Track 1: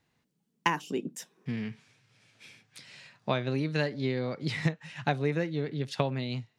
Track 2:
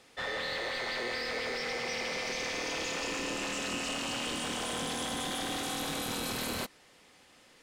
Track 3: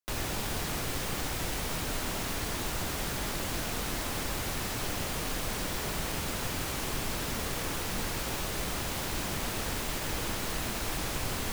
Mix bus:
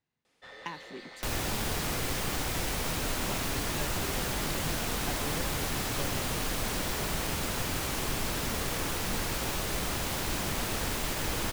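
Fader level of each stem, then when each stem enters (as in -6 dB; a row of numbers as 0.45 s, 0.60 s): -12.5 dB, -13.0 dB, +1.5 dB; 0.00 s, 0.25 s, 1.15 s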